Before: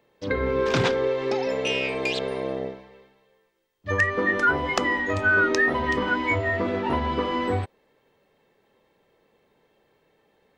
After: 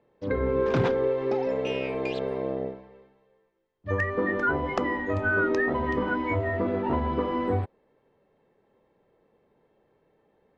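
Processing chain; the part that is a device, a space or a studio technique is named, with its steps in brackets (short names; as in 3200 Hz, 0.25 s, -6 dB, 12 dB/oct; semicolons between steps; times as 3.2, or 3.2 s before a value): through cloth (LPF 8200 Hz; high shelf 2100 Hz -17 dB)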